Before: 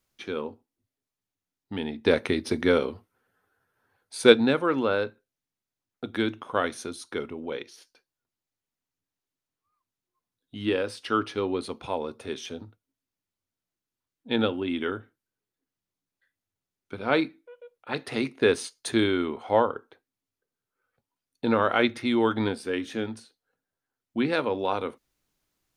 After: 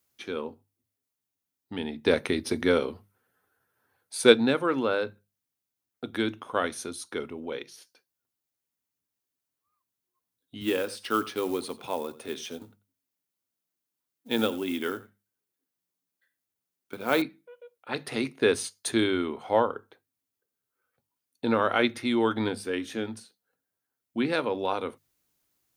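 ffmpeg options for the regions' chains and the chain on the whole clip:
-filter_complex "[0:a]asettb=1/sr,asplit=3[a][b][c];[a]atrim=end=10.614[d];[b]atrim=start=10.61:end=17.22,asetpts=PTS-STARTPTS,afade=t=in:d=0.004:c=qsin,afade=t=out:st=6.606:d=0.004:c=qsin,highpass=130,acrusher=bits=6:mode=log:mix=0:aa=0.000001,aecho=1:1:89:0.126,atrim=end_sample=291501[e];[c]atrim=start=17.216[f];[d][e]acrossfade=d=0.004:c1=hsin:c2=qsin[g];[g][f]acrossfade=d=0.004:c1=qsin:c2=hsin,highpass=55,highshelf=f=9.4k:g=11.5,bandreject=f=50:t=h:w=6,bandreject=f=100:t=h:w=6,bandreject=f=150:t=h:w=6,bandreject=f=200:t=h:w=6,volume=-1.5dB"

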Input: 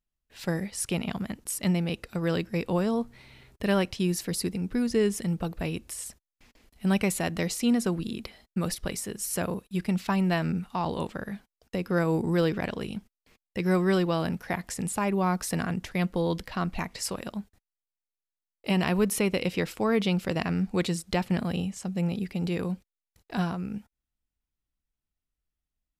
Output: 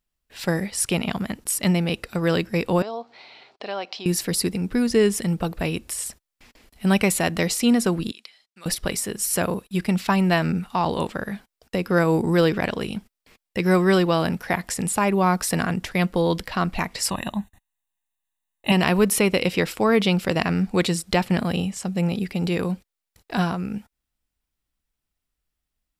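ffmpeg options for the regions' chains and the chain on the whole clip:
-filter_complex "[0:a]asettb=1/sr,asplit=3[a][b][c];[a]atrim=end=2.824[d];[b]atrim=start=2.82:end=4.06,asetpts=PTS-STARTPTS,afade=t=in:d=0.004:c=qsin,afade=t=out:st=1.236:d=0.004:c=qsin,acompressor=threshold=-37dB:ratio=2:attack=3.2:release=140:knee=1:detection=peak,highpass=440,equalizer=f=740:t=q:w=4:g=9,equalizer=f=1.8k:t=q:w=4:g=-5,equalizer=f=4.4k:t=q:w=4:g=4,lowpass=f=5.3k:w=0.5412,lowpass=f=5.3k:w=1.3066[e];[c]atrim=start=4.056[f];[d][e]acrossfade=d=0.004:c1=hsin:c2=qsin[g];[g][f]acrossfade=d=0.004:c1=qsin:c2=hsin,asettb=1/sr,asplit=3[h][i][j];[h]atrim=end=8.114[k];[i]atrim=start=8.11:end=8.66,asetpts=PTS-STARTPTS,afade=t=in:d=0.004:c=qsin,afade=t=out:st=0.546:d=0.004:c=qsin,lowpass=4.9k,aderivative[l];[j]atrim=start=8.656[m];[k][l]acrossfade=d=0.004:c1=hsin:c2=qsin[n];[n][m]acrossfade=d=0.004:c1=qsin:c2=hsin,asettb=1/sr,asplit=3[o][p][q];[o]atrim=end=17.104[r];[p]atrim=start=17.1:end=18.72,asetpts=PTS-STARTPTS,afade=t=in:d=0.004:c=qsin,afade=t=out:st=1.616:d=0.004:c=qsin,asuperstop=centerf=5000:order=12:qfactor=3.3,aecho=1:1:1.1:0.74,atrim=end_sample=71442[s];[q]atrim=start=18.716[t];[r][s]acrossfade=d=0.004:c1=hsin:c2=qsin[u];[u][t]acrossfade=d=0.004:c1=qsin:c2=hsin,lowshelf=f=330:g=-4,bandreject=f=6.4k:w=21,volume=8dB"

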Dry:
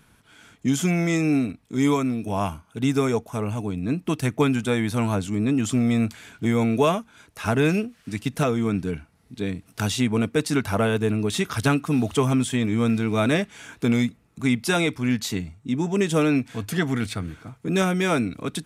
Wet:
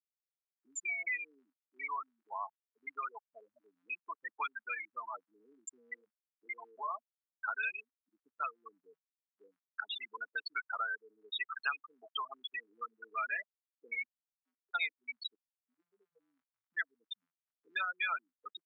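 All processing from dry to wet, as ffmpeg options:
-filter_complex "[0:a]asettb=1/sr,asplit=3[a][b][c];[a]atrim=end=3.544[d];[b]atrim=start=3.54:end=4.09,asetpts=PTS-STARTPTS,afade=t=in:d=0.004:c=qsin,afade=t=out:st=0.546:d=0.004:c=qsin,highshelf=f=1.9k:t=q:w=1.5:g=8,bandreject=f=45.27:t=h:w=4,bandreject=f=90.54:t=h:w=4,bandreject=f=135.81:t=h:w=4[e];[c]atrim=start=4.086[f];[d][e]acrossfade=d=0.004:c1=hsin:c2=qsin[g];[g][f]acrossfade=d=0.004:c1=qsin:c2=hsin,asettb=1/sr,asplit=3[h][i][j];[h]atrim=end=5.944[k];[i]atrim=start=5.94:end=6.91,asetpts=PTS-STARTPTS,afade=t=in:d=0.004:c=qsin,afade=t=out:st=0.966:d=0.004:c=qsin,highpass=f=110:w=0.5412,highpass=f=110:w=1.3066,acompressor=threshold=-20dB:ratio=6:attack=3.2:release=140:knee=1:detection=peak,asplit=2[l][m];[m]adelay=20,volume=-5dB[n];[l][n]amix=inputs=2:normalize=0,atrim=end_sample=42777[o];[j]atrim=start=6.906[p];[k][o]acrossfade=d=0.004:c1=hsin:c2=qsin[q];[q][p]acrossfade=d=0.004:c1=qsin:c2=hsin,asettb=1/sr,asplit=3[r][s][t];[r]atrim=end=14.044[u];[s]atrim=start=14.04:end=14.75,asetpts=PTS-STARTPTS,afade=t=in:d=0.004:c=qsin,afade=t=out:st=0.706:d=0.004:c=qsin,acompressor=threshold=-38dB:ratio=4:attack=3.2:release=140:knee=1:detection=peak,lowpass=f=2.2k:w=0.5412,lowpass=f=2.2k:w=1.3066[v];[t]atrim=start=14.746[w];[u][v]acrossfade=d=0.004:c1=hsin:c2=qsin[x];[x][w]acrossfade=d=0.004:c1=qsin:c2=hsin,asettb=1/sr,asplit=3[y][z][aa];[y]atrim=end=15.354[ab];[z]atrim=start=15.35:end=16.7,asetpts=PTS-STARTPTS,afade=t=in:d=0.004:c=qsin,afade=t=out:st=1.346:d=0.004:c=qsin,asubboost=boost=11.5:cutoff=140,acompressor=threshold=-36dB:ratio=2.5:attack=3.2:release=140:knee=1:detection=peak,agate=range=-33dB:threshold=-38dB:ratio=3:release=100:detection=peak[ac];[aa]atrim=start=16.696[ad];[ab][ac]acrossfade=d=0.004:c1=hsin:c2=qsin[ae];[ae][ad]acrossfade=d=0.004:c1=qsin:c2=hsin,afftfilt=real='re*gte(hypot(re,im),0.158)':imag='im*gte(hypot(re,im),0.158)':win_size=1024:overlap=0.75,highpass=f=1.3k:w=0.5412,highpass=f=1.3k:w=1.3066,acompressor=threshold=-49dB:ratio=2,volume=8dB"

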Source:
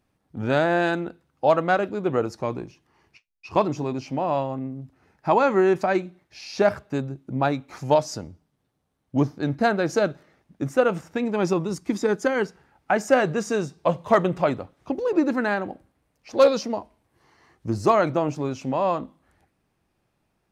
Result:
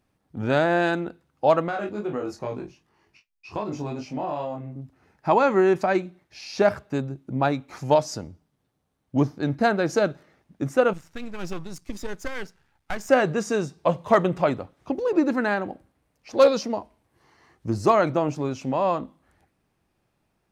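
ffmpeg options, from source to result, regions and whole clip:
-filter_complex "[0:a]asettb=1/sr,asplit=3[a][b][c];[a]atrim=end=1.684[d];[b]atrim=start=1.68:end=4.76,asetpts=PTS-STARTPTS,afade=t=in:d=0.004:c=qsin,afade=t=out:st=3.076:d=0.004:c=qsin,asplit=2[e][f];[f]adelay=24,volume=-6dB[g];[e][g]amix=inputs=2:normalize=0,atrim=end_sample=135828,flanger=delay=19:depth=2.3:speed=2.5,acompressor=threshold=-24dB:ratio=6:attack=3.2:release=140:knee=1:detection=peak[h];[c]atrim=start=4.756[i];[d][h]acrossfade=d=0.004:c1=hsin:c2=qsin[j];[j][i]acrossfade=d=0.004:c1=qsin:c2=hsin,asettb=1/sr,asplit=3[k][l][m];[k]atrim=end=10.934[n];[l]atrim=start=10.93:end=13.09,asetpts=PTS-STARTPTS,afade=t=in:d=0.004:c=qsin,afade=t=out:st=2.156:d=0.004:c=qsin,aeval=exprs='if(lt(val(0),0),0.251*val(0),val(0))':c=same,equalizer=f=470:w=0.36:g=-9.5[o];[m]atrim=start=13.086[p];[n][o]acrossfade=d=0.004:c1=hsin:c2=qsin[q];[q][p]acrossfade=d=0.004:c1=qsin:c2=hsin"

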